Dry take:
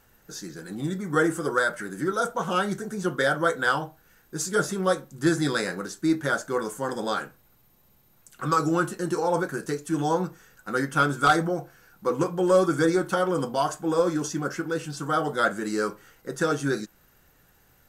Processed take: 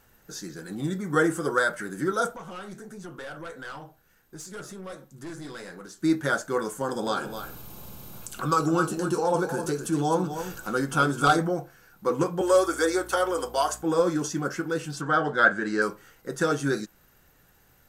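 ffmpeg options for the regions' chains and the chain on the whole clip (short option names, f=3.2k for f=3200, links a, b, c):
-filter_complex "[0:a]asettb=1/sr,asplit=3[a][b][c];[a]atrim=end=2.364[d];[b]atrim=start=2.36:end=6.01,asetpts=PTS-STARTPTS,afade=t=in:d=0.004:c=qsin,afade=t=out:st=3.646:d=0.004:c=qsin,flanger=delay=5.7:depth=7.2:regen=-68:speed=1.5:shape=triangular,aeval=exprs='(tanh(17.8*val(0)+0.35)-tanh(0.35))/17.8':c=same,acompressor=threshold=-41dB:ratio=2:attack=3.2:release=140:knee=1:detection=peak[e];[c]atrim=start=6.006[f];[d][e]acrossfade=d=0.004:c1=hsin:c2=qsin[g];[g][f]acrossfade=d=0.004:c1=qsin:c2=hsin,asettb=1/sr,asplit=3[h][i][j];[h]atrim=end=6.814[k];[i]atrim=start=6.81:end=11.39,asetpts=PTS-STARTPTS,afade=t=in:d=0.004:c=qsin,afade=t=out:st=4.576:d=0.004:c=qsin,equalizer=f=1.9k:t=o:w=0.27:g=-12.5,acompressor=mode=upward:threshold=-25dB:ratio=2.5:attack=3.2:release=140:knee=2.83:detection=peak,aecho=1:1:260:0.335,atrim=end_sample=201978[l];[j]atrim=start=11.386[m];[k][l]acrossfade=d=0.004:c1=hsin:c2=qsin[n];[n][m]acrossfade=d=0.004:c1=qsin:c2=hsin,asettb=1/sr,asplit=3[o][p][q];[o]atrim=end=12.414[r];[p]atrim=start=12.41:end=13.83,asetpts=PTS-STARTPTS,afade=t=in:d=0.004:c=qsin,afade=t=out:st=1.416:d=0.004:c=qsin,highpass=f=370:w=0.5412,highpass=f=370:w=1.3066,highshelf=f=5.2k:g=7,aeval=exprs='val(0)+0.00398*(sin(2*PI*60*n/s)+sin(2*PI*2*60*n/s)/2+sin(2*PI*3*60*n/s)/3+sin(2*PI*4*60*n/s)/4+sin(2*PI*5*60*n/s)/5)':c=same[s];[q]atrim=start=13.826[t];[r][s]acrossfade=d=0.004:c1=hsin:c2=qsin[u];[u][t]acrossfade=d=0.004:c1=qsin:c2=hsin,asettb=1/sr,asplit=3[v][w][x];[v]atrim=end=15.014[y];[w]atrim=start=15.01:end=15.82,asetpts=PTS-STARTPTS,afade=t=in:d=0.004:c=qsin,afade=t=out:st=0.806:d=0.004:c=qsin,lowpass=4.6k,equalizer=f=1.6k:w=6.6:g=11.5[z];[x]atrim=start=15.816[aa];[y][z]acrossfade=d=0.004:c1=hsin:c2=qsin[ab];[ab][aa]acrossfade=d=0.004:c1=qsin:c2=hsin"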